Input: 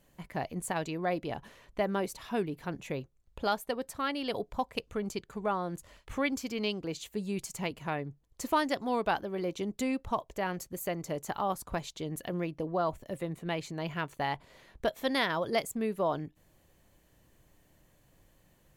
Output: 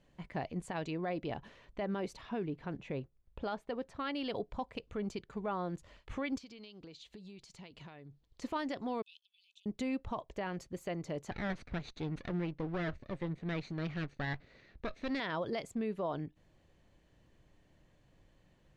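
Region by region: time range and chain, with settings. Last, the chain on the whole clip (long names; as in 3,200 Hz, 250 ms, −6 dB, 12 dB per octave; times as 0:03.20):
0:02.21–0:03.99: one scale factor per block 7 bits + low-pass filter 2,700 Hz 6 dB per octave
0:06.38–0:08.42: parametric band 4,100 Hz +9.5 dB 1 octave + downward compressor 16 to 1, threshold −45 dBFS
0:09.02–0:09.66: Chebyshev high-pass with heavy ripple 2,500 Hz, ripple 9 dB + output level in coarse steps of 11 dB
0:11.31–0:15.20: lower of the sound and its delayed copy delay 0.47 ms + low-pass filter 5,800 Hz
whole clip: low-pass filter 4,300 Hz 12 dB per octave; parametric band 1,100 Hz −2.5 dB 2.2 octaves; brickwall limiter −26.5 dBFS; level −1 dB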